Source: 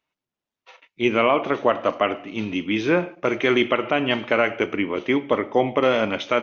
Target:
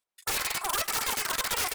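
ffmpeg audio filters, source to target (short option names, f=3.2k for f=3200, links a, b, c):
-af "aeval=exprs='(mod(8.41*val(0)+1,2)-1)/8.41':c=same,asetrate=162288,aresample=44100,aecho=1:1:105|210|315|420:0.1|0.051|0.026|0.0133,volume=-3dB"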